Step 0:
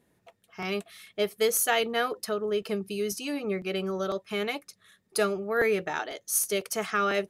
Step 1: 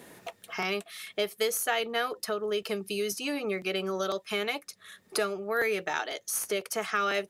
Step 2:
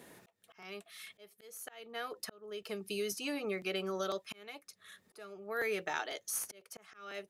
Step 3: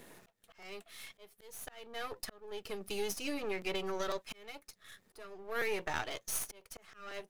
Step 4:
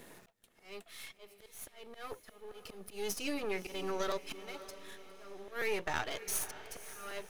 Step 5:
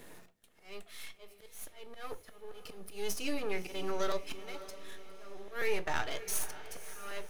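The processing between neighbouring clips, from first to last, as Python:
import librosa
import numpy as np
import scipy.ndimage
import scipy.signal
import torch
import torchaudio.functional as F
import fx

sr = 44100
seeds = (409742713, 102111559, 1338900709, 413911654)

y1 = fx.low_shelf(x, sr, hz=270.0, db=-10.0)
y1 = fx.band_squash(y1, sr, depth_pct=70)
y2 = fx.auto_swell(y1, sr, attack_ms=613.0)
y2 = y2 * 10.0 ** (-5.5 / 20.0)
y3 = np.where(y2 < 0.0, 10.0 ** (-12.0 / 20.0) * y2, y2)
y3 = y3 * 10.0 ** (3.5 / 20.0)
y4 = fx.auto_swell(y3, sr, attack_ms=177.0)
y4 = fx.echo_diffused(y4, sr, ms=568, feedback_pct=49, wet_db=-14)
y4 = y4 * 10.0 ** (1.0 / 20.0)
y5 = fx.room_shoebox(y4, sr, seeds[0], volume_m3=150.0, walls='furnished', distance_m=0.44)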